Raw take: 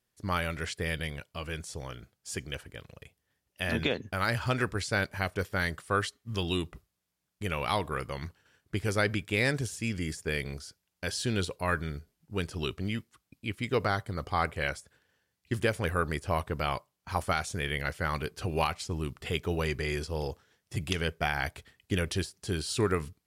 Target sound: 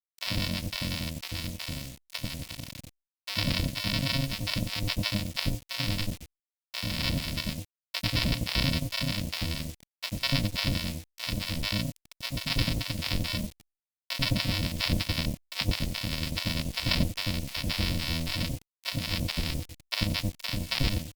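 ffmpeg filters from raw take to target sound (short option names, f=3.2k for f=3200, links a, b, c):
-filter_complex "[0:a]afftfilt=real='re*(1-between(b*sr/4096,1100,3300))':imag='im*(1-between(b*sr/4096,1100,3300))':win_size=4096:overlap=0.75,agate=range=-15dB:threshold=-56dB:ratio=16:detection=peak,highshelf=f=1.6k:t=q:w=1.5:g=-10,asplit=2[a][b];[b]acompressor=threshold=-42dB:ratio=5,volume=-3dB[c];[a][c]amix=inputs=2:normalize=0,asetrate=48510,aresample=44100,aresample=11025,acrusher=samples=27:mix=1:aa=0.000001,aresample=44100,acrossover=split=670[d][e];[d]adelay=90[f];[f][e]amix=inputs=2:normalize=0,acrusher=bits=8:mix=0:aa=0.000001,aexciter=amount=3.8:drive=7:freq=2.1k" -ar 48000 -c:a libopus -b:a 256k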